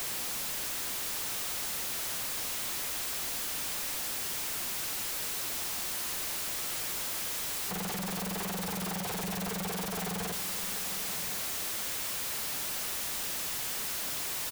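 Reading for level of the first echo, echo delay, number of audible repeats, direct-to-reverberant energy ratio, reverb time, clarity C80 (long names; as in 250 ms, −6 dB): −12.0 dB, 1,068 ms, 1, no reverb audible, no reverb audible, no reverb audible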